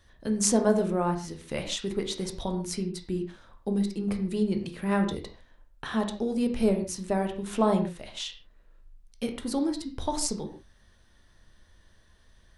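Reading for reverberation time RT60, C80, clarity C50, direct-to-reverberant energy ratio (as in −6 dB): non-exponential decay, 12.5 dB, 9.5 dB, 5.0 dB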